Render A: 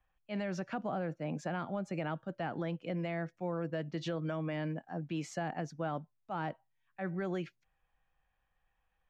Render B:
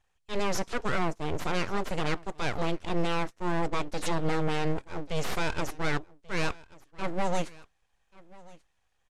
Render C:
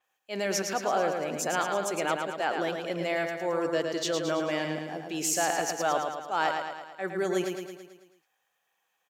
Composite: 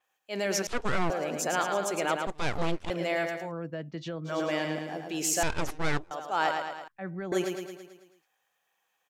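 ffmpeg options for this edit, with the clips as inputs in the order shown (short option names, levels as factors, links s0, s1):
-filter_complex "[1:a]asplit=3[s0][s1][s2];[0:a]asplit=2[s3][s4];[2:a]asplit=6[s5][s6][s7][s8][s9][s10];[s5]atrim=end=0.672[s11];[s0]atrim=start=0.668:end=1.102[s12];[s6]atrim=start=1.098:end=2.272[s13];[s1]atrim=start=2.268:end=2.902[s14];[s7]atrim=start=2.898:end=3.53[s15];[s3]atrim=start=3.37:end=4.4[s16];[s8]atrim=start=4.24:end=5.432[s17];[s2]atrim=start=5.428:end=6.112[s18];[s9]atrim=start=6.108:end=6.882[s19];[s4]atrim=start=6.878:end=7.322[s20];[s10]atrim=start=7.318[s21];[s11][s12]acrossfade=d=0.004:c1=hsin:c2=hsin[s22];[s22][s13]acrossfade=d=0.004:c1=hsin:c2=hsin[s23];[s23][s14]acrossfade=d=0.004:c1=hsin:c2=hsin[s24];[s24][s15]acrossfade=d=0.004:c1=hsin:c2=hsin[s25];[s25][s16]acrossfade=d=0.16:c1=tri:c2=tri[s26];[s26][s17]acrossfade=d=0.16:c1=tri:c2=tri[s27];[s27][s18]acrossfade=d=0.004:c1=hsin:c2=hsin[s28];[s28][s19]acrossfade=d=0.004:c1=hsin:c2=hsin[s29];[s29][s20]acrossfade=d=0.004:c1=hsin:c2=hsin[s30];[s30][s21]acrossfade=d=0.004:c1=hsin:c2=hsin"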